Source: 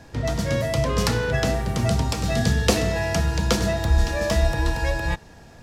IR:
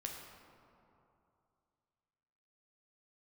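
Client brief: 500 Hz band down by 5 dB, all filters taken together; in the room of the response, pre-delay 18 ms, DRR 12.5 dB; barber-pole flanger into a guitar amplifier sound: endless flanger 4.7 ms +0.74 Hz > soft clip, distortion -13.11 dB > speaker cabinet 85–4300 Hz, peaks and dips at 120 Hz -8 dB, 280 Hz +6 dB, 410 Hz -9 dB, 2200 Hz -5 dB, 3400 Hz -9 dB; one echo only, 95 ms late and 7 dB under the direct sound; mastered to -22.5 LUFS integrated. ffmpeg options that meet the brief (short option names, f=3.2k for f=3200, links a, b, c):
-filter_complex "[0:a]equalizer=f=500:t=o:g=-5,aecho=1:1:95:0.447,asplit=2[a][b];[1:a]atrim=start_sample=2205,adelay=18[c];[b][c]afir=irnorm=-1:irlink=0,volume=-11.5dB[d];[a][d]amix=inputs=2:normalize=0,asplit=2[e][f];[f]adelay=4.7,afreqshift=0.74[g];[e][g]amix=inputs=2:normalize=1,asoftclip=threshold=-21dB,highpass=85,equalizer=f=120:t=q:w=4:g=-8,equalizer=f=280:t=q:w=4:g=6,equalizer=f=410:t=q:w=4:g=-9,equalizer=f=2.2k:t=q:w=4:g=-5,equalizer=f=3.4k:t=q:w=4:g=-9,lowpass=f=4.3k:w=0.5412,lowpass=f=4.3k:w=1.3066,volume=9dB"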